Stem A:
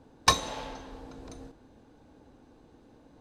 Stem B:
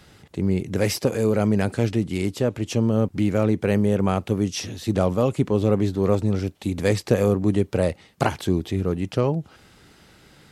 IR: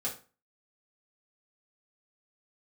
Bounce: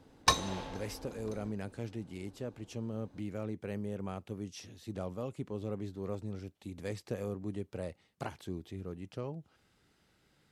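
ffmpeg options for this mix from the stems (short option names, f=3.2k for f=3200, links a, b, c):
-filter_complex "[0:a]volume=-4dB[a];[1:a]volume=-18.5dB[b];[a][b]amix=inputs=2:normalize=0"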